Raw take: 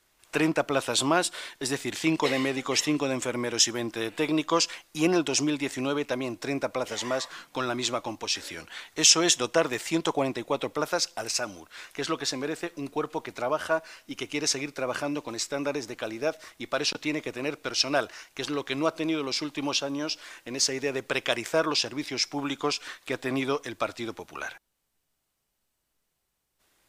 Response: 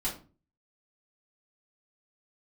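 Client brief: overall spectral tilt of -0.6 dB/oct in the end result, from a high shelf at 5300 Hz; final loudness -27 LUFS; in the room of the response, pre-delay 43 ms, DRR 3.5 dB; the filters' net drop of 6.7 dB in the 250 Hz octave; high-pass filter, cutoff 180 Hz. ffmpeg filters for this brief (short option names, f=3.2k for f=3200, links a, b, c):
-filter_complex "[0:a]highpass=180,equalizer=f=250:t=o:g=-8.5,highshelf=f=5.3k:g=8.5,asplit=2[a][b];[1:a]atrim=start_sample=2205,adelay=43[c];[b][c]afir=irnorm=-1:irlink=0,volume=-8dB[d];[a][d]amix=inputs=2:normalize=0,volume=-2.5dB"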